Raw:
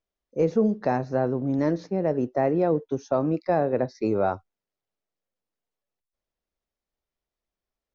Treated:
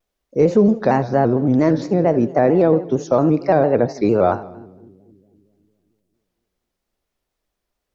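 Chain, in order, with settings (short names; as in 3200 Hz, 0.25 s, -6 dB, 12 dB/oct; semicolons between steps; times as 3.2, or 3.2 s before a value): in parallel at -3 dB: limiter -20.5 dBFS, peak gain reduction 8.5 dB; on the sum: split-band echo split 350 Hz, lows 0.258 s, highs 80 ms, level -16 dB; shaped vibrato square 4.4 Hz, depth 100 cents; gain +5.5 dB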